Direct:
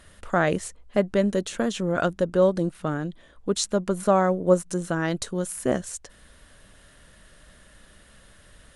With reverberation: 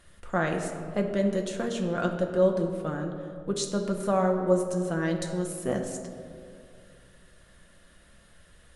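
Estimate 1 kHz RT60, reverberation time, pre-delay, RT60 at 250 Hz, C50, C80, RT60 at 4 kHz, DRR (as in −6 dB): 2.1 s, 2.4 s, 6 ms, 2.6 s, 6.0 dB, 7.0 dB, 1.1 s, 2.5 dB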